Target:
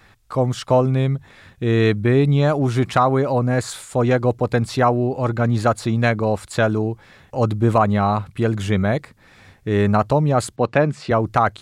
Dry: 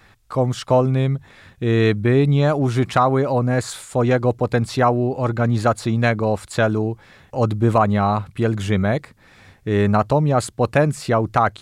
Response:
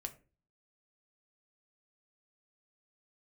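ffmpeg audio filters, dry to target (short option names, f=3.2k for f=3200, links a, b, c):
-filter_complex "[0:a]asettb=1/sr,asplit=3[a][b][c];[a]atrim=end=10.564[d];[b]atrim=start=10.56:end=11.11,asetpts=PTS-STARTPTS,afade=t=in:d=0.004:c=qsin,afade=t=out:st=0.546:d=0.004:c=qsin,highpass=130,lowpass=4.4k[e];[c]atrim=start=11.106[f];[d][e]acrossfade=d=0.004:c1=hsin:c2=qsin[g];[g][f]acrossfade=d=0.004:c1=qsin:c2=hsin"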